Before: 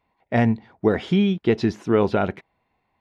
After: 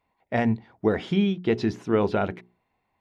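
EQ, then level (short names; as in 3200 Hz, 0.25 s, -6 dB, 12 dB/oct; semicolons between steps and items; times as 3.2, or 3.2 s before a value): notches 60/120/180/240/300/360/420 Hz; -3.0 dB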